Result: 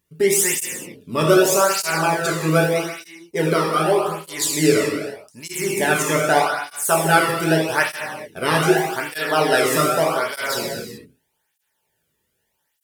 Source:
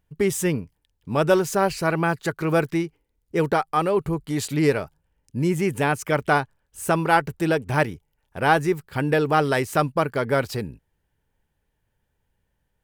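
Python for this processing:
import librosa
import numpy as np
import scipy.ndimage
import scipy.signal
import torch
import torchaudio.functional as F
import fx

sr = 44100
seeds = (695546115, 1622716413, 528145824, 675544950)

y = fx.high_shelf(x, sr, hz=2900.0, db=12.0)
y = fx.rev_gated(y, sr, seeds[0], gate_ms=460, shape='falling', drr_db=-3.5)
y = fx.flanger_cancel(y, sr, hz=0.82, depth_ms=1.4)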